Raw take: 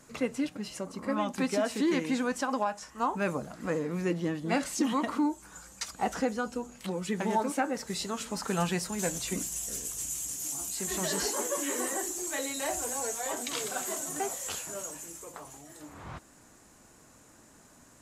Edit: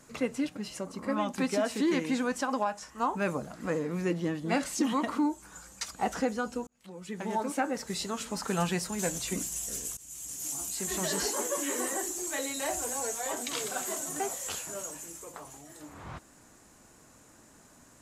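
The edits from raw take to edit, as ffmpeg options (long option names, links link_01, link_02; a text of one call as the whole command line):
ffmpeg -i in.wav -filter_complex "[0:a]asplit=3[link_01][link_02][link_03];[link_01]atrim=end=6.67,asetpts=PTS-STARTPTS,afade=type=out:start_time=6.666:duration=0.004:curve=hsin[link_04];[link_02]atrim=start=6.67:end=9.97,asetpts=PTS-STARTPTS,afade=type=in:duration=0.99,afade=type=out:start_time=3.296:duration=0.004:curve=hsin:silence=0.0891251[link_05];[link_03]atrim=start=9.97,asetpts=PTS-STARTPTS,afade=type=in:duration=0.53:silence=0.0891251[link_06];[link_04][link_05][link_06]concat=n=3:v=0:a=1" out.wav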